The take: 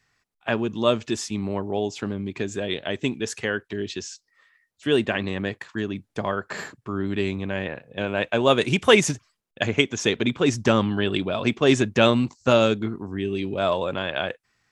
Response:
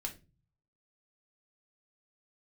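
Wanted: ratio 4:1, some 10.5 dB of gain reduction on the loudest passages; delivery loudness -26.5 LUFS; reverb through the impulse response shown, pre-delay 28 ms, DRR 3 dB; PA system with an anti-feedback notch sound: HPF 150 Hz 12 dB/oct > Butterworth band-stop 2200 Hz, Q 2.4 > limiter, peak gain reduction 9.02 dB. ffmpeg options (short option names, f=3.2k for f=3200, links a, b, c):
-filter_complex "[0:a]acompressor=threshold=-23dB:ratio=4,asplit=2[a][b];[1:a]atrim=start_sample=2205,adelay=28[c];[b][c]afir=irnorm=-1:irlink=0,volume=-2dB[d];[a][d]amix=inputs=2:normalize=0,highpass=150,asuperstop=centerf=2200:order=8:qfactor=2.4,volume=4dB,alimiter=limit=-15dB:level=0:latency=1"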